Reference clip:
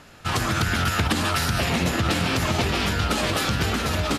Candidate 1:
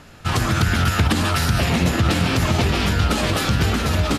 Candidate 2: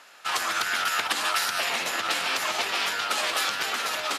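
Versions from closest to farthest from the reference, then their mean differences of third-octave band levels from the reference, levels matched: 1, 2; 2.0, 8.0 dB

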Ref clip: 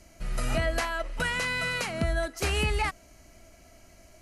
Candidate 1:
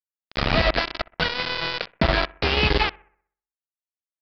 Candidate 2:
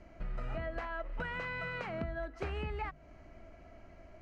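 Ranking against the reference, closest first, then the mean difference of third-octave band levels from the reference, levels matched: 2, 1; 8.0, 13.5 dB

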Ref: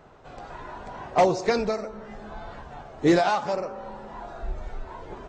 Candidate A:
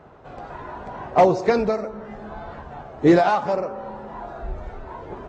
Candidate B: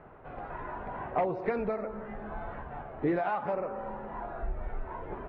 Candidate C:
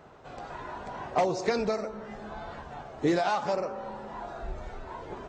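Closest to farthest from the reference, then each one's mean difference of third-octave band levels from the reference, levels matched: A, C, B; 2.0, 3.5, 6.0 dB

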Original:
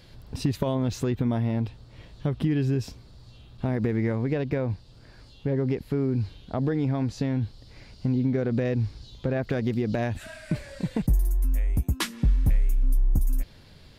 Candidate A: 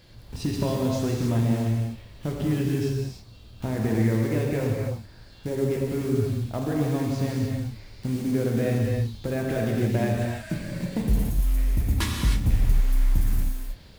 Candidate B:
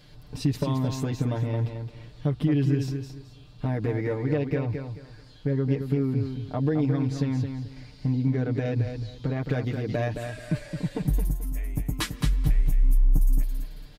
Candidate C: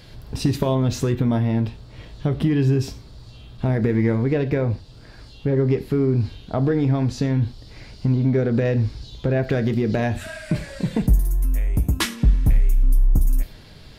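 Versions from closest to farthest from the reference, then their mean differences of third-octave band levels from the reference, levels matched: C, B, A; 1.5, 3.5, 8.5 dB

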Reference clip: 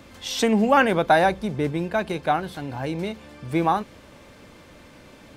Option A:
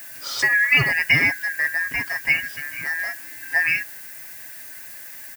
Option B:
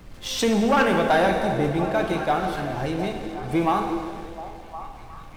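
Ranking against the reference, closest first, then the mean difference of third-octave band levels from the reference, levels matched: B, A; 5.5, 13.0 dB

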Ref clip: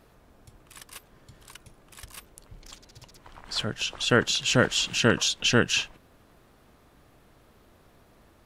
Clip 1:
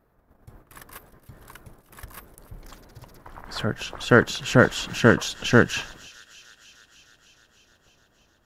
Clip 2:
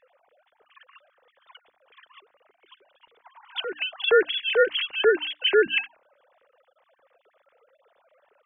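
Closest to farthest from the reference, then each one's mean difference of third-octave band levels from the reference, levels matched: 1, 2; 3.5, 15.5 dB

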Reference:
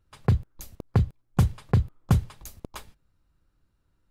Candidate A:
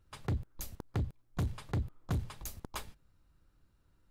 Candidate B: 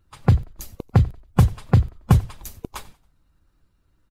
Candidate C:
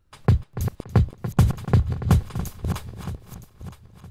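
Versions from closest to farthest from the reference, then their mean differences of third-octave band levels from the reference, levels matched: B, C, A; 1.5, 4.5, 8.0 dB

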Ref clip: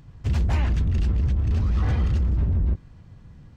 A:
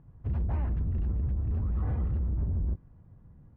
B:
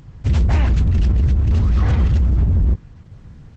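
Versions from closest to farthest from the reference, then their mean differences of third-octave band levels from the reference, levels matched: B, A; 1.0, 3.5 dB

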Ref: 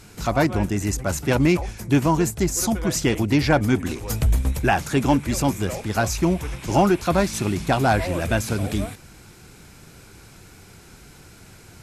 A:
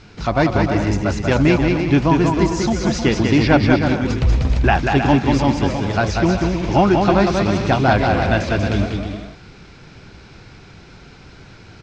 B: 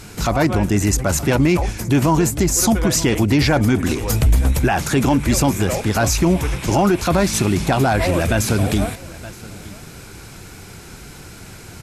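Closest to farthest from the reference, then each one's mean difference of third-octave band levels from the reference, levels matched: B, A; 3.0, 6.5 dB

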